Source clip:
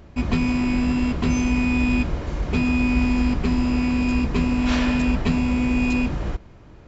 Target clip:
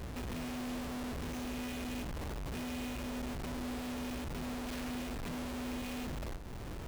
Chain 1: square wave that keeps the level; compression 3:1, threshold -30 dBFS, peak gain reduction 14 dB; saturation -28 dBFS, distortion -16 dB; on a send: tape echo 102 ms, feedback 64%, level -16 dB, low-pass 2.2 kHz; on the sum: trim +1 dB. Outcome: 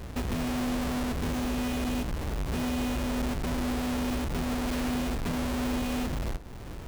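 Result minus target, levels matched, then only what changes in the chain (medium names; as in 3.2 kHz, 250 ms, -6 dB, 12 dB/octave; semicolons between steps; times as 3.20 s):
saturation: distortion -8 dB
change: saturation -40 dBFS, distortion -8 dB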